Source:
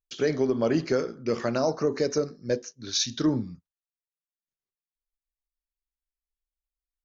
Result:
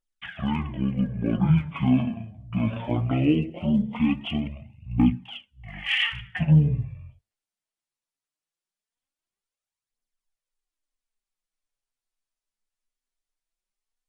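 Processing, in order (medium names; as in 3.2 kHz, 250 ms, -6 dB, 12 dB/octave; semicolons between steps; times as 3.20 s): phaser 0.4 Hz, delay 5 ms, feedback 56%; speed mistake 15 ips tape played at 7.5 ips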